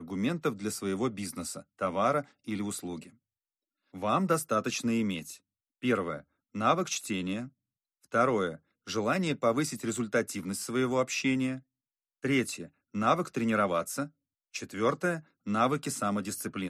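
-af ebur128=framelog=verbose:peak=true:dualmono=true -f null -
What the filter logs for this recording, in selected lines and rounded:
Integrated loudness:
  I:         -27.8 LUFS
  Threshold: -38.3 LUFS
Loudness range:
  LRA:         2.5 LU
  Threshold: -48.5 LUFS
  LRA low:   -29.9 LUFS
  LRA high:  -27.5 LUFS
True peak:
  Peak:      -11.6 dBFS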